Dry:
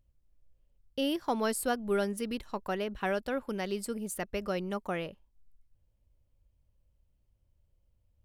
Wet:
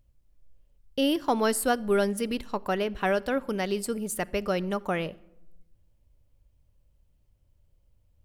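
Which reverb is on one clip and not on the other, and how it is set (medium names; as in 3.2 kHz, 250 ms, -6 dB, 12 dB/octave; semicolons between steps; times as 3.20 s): simulated room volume 3300 m³, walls furnished, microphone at 0.36 m; trim +5.5 dB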